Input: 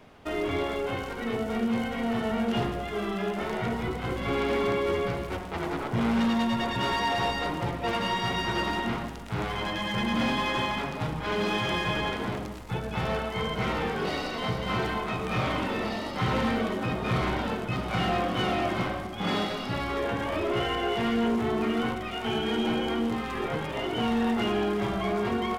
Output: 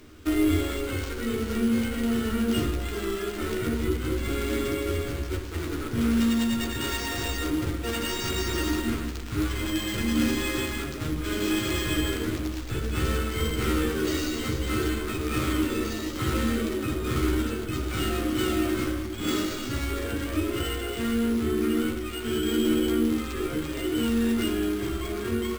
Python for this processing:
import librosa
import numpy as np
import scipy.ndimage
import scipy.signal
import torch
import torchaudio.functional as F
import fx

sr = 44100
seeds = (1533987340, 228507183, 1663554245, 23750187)

y = fx.curve_eq(x, sr, hz=(100.0, 180.0, 310.0, 830.0, 1300.0, 2000.0, 4000.0, 13000.0), db=(0, -15, 2, -25, -8, -10, -5, 11))
y = fx.rider(y, sr, range_db=10, speed_s=2.0)
y = fx.doubler(y, sr, ms=13.0, db=-4.0)
y = np.repeat(y[::4], 4)[:len(y)]
y = F.gain(torch.from_numpy(y), 5.5).numpy()